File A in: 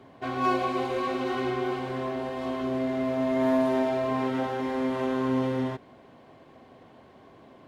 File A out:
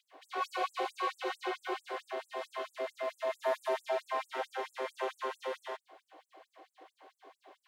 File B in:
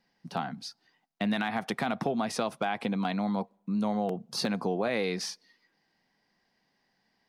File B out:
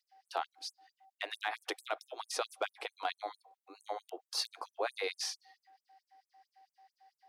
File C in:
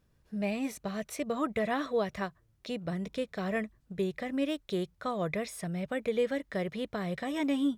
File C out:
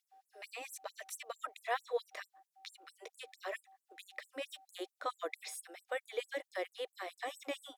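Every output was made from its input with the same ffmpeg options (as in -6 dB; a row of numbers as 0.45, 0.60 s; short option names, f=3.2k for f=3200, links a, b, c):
-filter_complex "[0:a]acrossover=split=390|3000[a][b][c];[a]acompressor=threshold=-44dB:ratio=2.5[d];[d][b][c]amix=inputs=3:normalize=0,aeval=exprs='val(0)+0.00141*sin(2*PI*770*n/s)':c=same,afftfilt=real='re*gte(b*sr/1024,260*pow(7600/260,0.5+0.5*sin(2*PI*4.5*pts/sr)))':imag='im*gte(b*sr/1024,260*pow(7600/260,0.5+0.5*sin(2*PI*4.5*pts/sr)))':win_size=1024:overlap=0.75,volume=-1.5dB"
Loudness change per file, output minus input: -9.5, -8.0, -9.5 LU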